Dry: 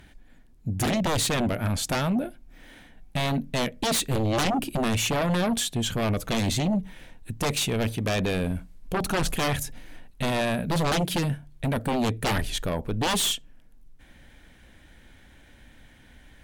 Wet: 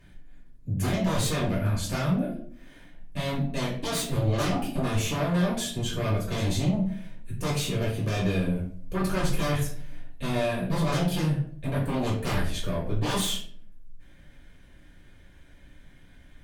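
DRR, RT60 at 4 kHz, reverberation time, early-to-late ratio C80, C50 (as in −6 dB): −7.0 dB, 0.35 s, 0.55 s, 9.5 dB, 5.5 dB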